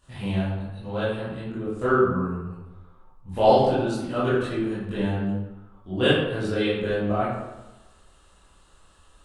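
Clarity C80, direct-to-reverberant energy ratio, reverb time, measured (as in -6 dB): 2.5 dB, -12.5 dB, 1.1 s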